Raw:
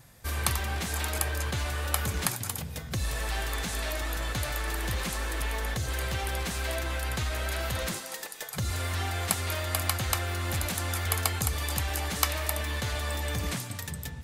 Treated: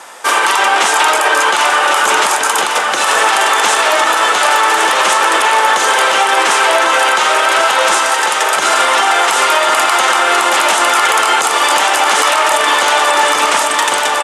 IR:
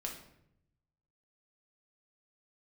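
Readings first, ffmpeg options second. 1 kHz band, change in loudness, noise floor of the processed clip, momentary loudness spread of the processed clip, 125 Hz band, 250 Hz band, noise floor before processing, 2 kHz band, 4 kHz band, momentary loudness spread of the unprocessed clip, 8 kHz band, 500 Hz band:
+27.5 dB, +20.0 dB, −15 dBFS, 2 LU, below −15 dB, +11.0 dB, −41 dBFS, +23.0 dB, +21.0 dB, 5 LU, +17.5 dB, +21.5 dB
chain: -af "highpass=frequency=370:width=0.5412,highpass=frequency=370:width=1.3066,equalizer=frequency=900:width_type=q:width=4:gain=10,equalizer=frequency=1300:width_type=q:width=4:gain=8,equalizer=frequency=3000:width_type=q:width=4:gain=4,equalizer=frequency=4300:width_type=q:width=4:gain=-5,lowpass=frequency=9600:width=0.5412,lowpass=frequency=9600:width=1.3066,aecho=1:1:1100|2200|3300|4400|5500|6600:0.447|0.237|0.125|0.0665|0.0352|0.0187,alimiter=level_in=24dB:limit=-1dB:release=50:level=0:latency=1,volume=-1dB"

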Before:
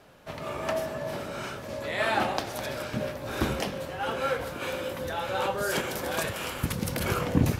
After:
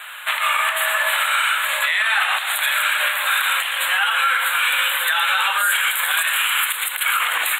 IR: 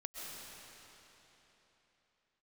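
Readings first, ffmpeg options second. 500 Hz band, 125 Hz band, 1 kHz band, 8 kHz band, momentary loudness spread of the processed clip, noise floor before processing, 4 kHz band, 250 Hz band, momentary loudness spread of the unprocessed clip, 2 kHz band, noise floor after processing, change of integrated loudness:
−6.5 dB, below −40 dB, +11.0 dB, +15.0 dB, 2 LU, −39 dBFS, +17.0 dB, below −30 dB, 8 LU, +18.0 dB, −26 dBFS, +13.0 dB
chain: -af "highpass=frequency=1300:width=0.5412,highpass=frequency=1300:width=1.3066,aecho=1:1:117:0.237,acompressor=threshold=-41dB:ratio=6,asuperstop=centerf=5400:order=8:qfactor=1.5,alimiter=level_in=35.5dB:limit=-1dB:release=50:level=0:latency=1,volume=-8dB"

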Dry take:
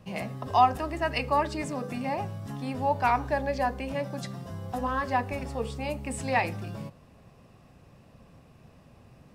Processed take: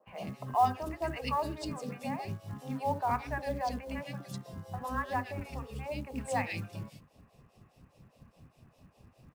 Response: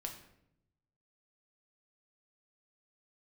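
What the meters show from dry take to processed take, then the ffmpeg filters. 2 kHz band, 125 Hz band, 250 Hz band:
−7.5 dB, −4.5 dB, −5.5 dB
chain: -filter_complex "[0:a]acrossover=split=910[link_01][link_02];[link_01]aeval=exprs='val(0)*(1-1/2+1/2*cos(2*PI*4.9*n/s))':channel_layout=same[link_03];[link_02]aeval=exprs='val(0)*(1-1/2-1/2*cos(2*PI*4.9*n/s))':channel_layout=same[link_04];[link_03][link_04]amix=inputs=2:normalize=0,acrossover=split=430|2200[link_05][link_06][link_07];[link_05]adelay=70[link_08];[link_07]adelay=110[link_09];[link_08][link_06][link_09]amix=inputs=3:normalize=0,acrusher=bits=7:mode=log:mix=0:aa=0.000001"

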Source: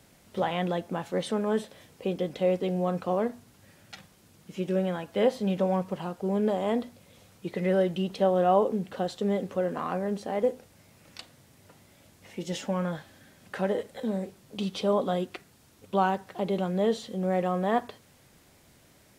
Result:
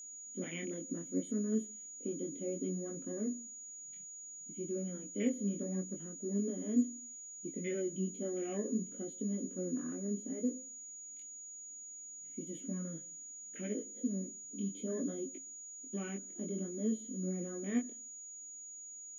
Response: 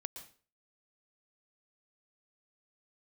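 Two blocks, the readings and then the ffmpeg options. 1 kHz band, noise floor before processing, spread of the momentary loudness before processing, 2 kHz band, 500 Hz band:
−29.5 dB, −59 dBFS, 16 LU, −14.0 dB, −14.5 dB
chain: -filter_complex "[0:a]afwtdn=0.0126,asplit=3[link_01][link_02][link_03];[link_01]bandpass=frequency=270:width_type=q:width=8,volume=0dB[link_04];[link_02]bandpass=frequency=2290:width_type=q:width=8,volume=-6dB[link_05];[link_03]bandpass=frequency=3010:width_type=q:width=8,volume=-9dB[link_06];[link_04][link_05][link_06]amix=inputs=3:normalize=0,bandreject=frequency=690:width=22,asplit=2[link_07][link_08];[1:a]atrim=start_sample=2205,lowpass=1400[link_09];[link_08][link_09]afir=irnorm=-1:irlink=0,volume=-12dB[link_10];[link_07][link_10]amix=inputs=2:normalize=0,flanger=delay=18.5:depth=6.6:speed=0.65,aexciter=amount=11.6:drive=8.7:freq=8700,aeval=exprs='val(0)+0.002*sin(2*PI*6800*n/s)':channel_layout=same,volume=7.5dB"

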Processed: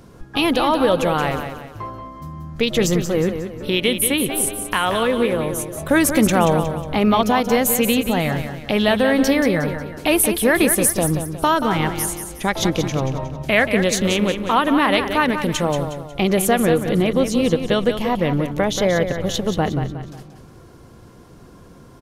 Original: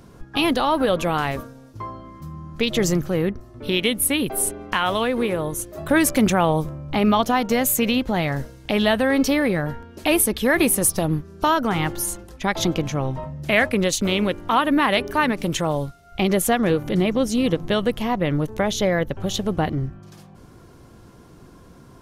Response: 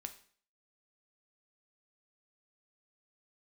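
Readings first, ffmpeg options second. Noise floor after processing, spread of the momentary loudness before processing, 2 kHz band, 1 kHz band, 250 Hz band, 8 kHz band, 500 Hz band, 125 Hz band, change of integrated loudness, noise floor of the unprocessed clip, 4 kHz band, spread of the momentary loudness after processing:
−44 dBFS, 10 LU, +2.0 dB, +2.0 dB, +2.0 dB, +2.0 dB, +3.5 dB, +2.0 dB, +2.5 dB, −47 dBFS, +2.0 dB, 9 LU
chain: -af "equalizer=frequency=490:width_type=o:width=0.27:gain=3,aecho=1:1:181|362|543|724:0.376|0.15|0.0601|0.0241,volume=1.5dB"

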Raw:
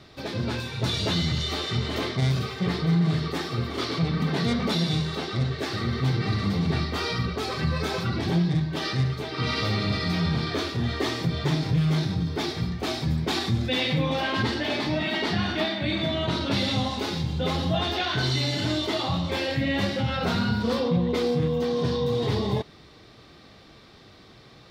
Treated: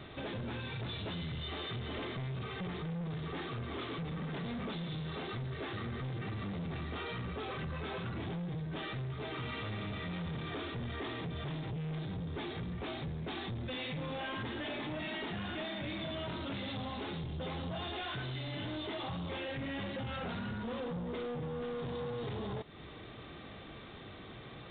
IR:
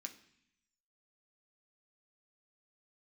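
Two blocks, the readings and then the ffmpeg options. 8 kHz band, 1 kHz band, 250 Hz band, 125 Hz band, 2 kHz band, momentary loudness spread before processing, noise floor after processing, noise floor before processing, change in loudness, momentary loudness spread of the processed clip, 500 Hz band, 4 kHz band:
below −35 dB, −11.5 dB, −13.5 dB, −14.0 dB, −11.5 dB, 4 LU, −49 dBFS, −51 dBFS, −14.0 dB, 2 LU, −12.5 dB, −15.0 dB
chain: -af "acompressor=threshold=-36dB:ratio=3,aresample=16000,asoftclip=type=tanh:threshold=-38.5dB,aresample=44100,aresample=8000,aresample=44100,volume=2.5dB"

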